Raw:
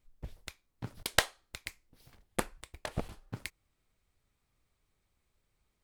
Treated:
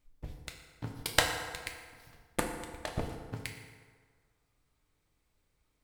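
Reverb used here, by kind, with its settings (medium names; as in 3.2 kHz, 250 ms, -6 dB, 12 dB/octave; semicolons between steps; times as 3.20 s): FDN reverb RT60 1.7 s, low-frequency decay 0.8×, high-frequency decay 0.6×, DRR 2 dB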